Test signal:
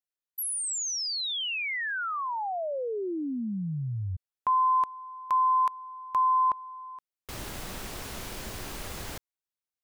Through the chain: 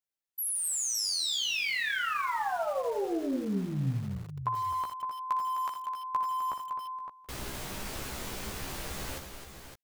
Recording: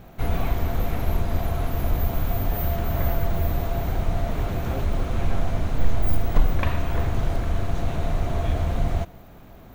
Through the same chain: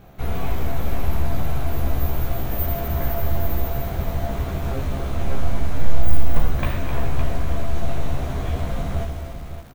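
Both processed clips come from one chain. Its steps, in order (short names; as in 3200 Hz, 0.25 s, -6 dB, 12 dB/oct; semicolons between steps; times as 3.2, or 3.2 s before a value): doubler 15 ms -4 dB; on a send: tapped delay 60/258/562 ms -11/-9/-9 dB; on the sum: lo-fi delay 82 ms, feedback 55%, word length 6-bit, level -11 dB; gain -2.5 dB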